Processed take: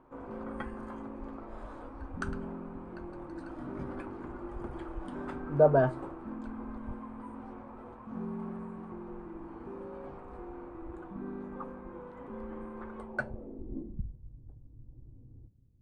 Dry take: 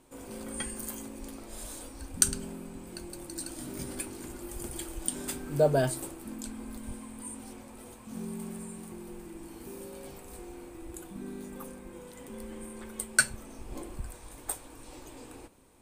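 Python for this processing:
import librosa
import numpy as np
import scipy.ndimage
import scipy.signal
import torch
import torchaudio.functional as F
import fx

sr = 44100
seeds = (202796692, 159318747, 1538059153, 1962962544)

y = fx.filter_sweep_lowpass(x, sr, from_hz=1200.0, to_hz=120.0, start_s=12.96, end_s=14.2, q=2.1)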